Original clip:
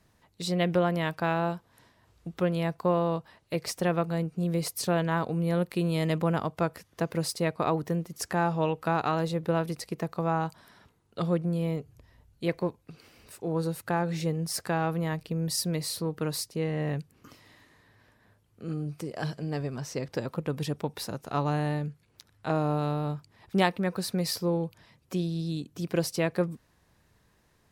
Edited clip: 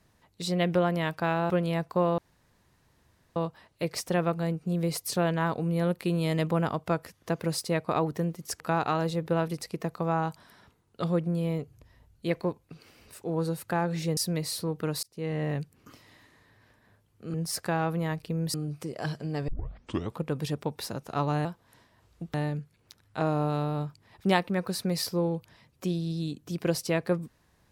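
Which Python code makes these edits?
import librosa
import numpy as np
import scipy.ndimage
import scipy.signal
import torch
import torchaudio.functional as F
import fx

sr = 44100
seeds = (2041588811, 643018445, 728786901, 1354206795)

y = fx.edit(x, sr, fx.move(start_s=1.5, length_s=0.89, to_s=21.63),
    fx.insert_room_tone(at_s=3.07, length_s=1.18),
    fx.cut(start_s=8.31, length_s=0.47),
    fx.move(start_s=14.35, length_s=1.2, to_s=18.72),
    fx.fade_in_span(start_s=16.41, length_s=0.31),
    fx.tape_start(start_s=19.66, length_s=0.72), tone=tone)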